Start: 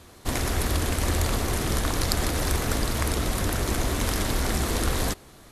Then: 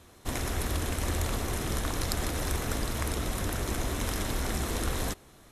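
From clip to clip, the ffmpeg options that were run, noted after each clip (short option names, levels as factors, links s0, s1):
-af "bandreject=f=4600:w=12,volume=0.531"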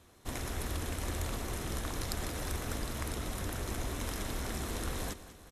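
-af "aecho=1:1:194|388|582|776|970|1164:0.178|0.103|0.0598|0.0347|0.0201|0.0117,volume=0.501"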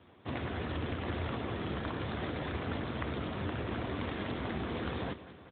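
-af "volume=1.68" -ar 8000 -c:a libopencore_amrnb -b:a 12200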